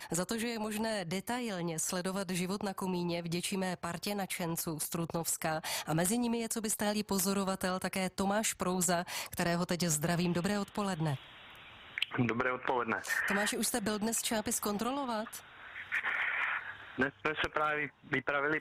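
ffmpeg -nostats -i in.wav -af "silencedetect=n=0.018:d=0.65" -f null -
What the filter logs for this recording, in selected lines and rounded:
silence_start: 11.15
silence_end: 11.98 | silence_duration: 0.82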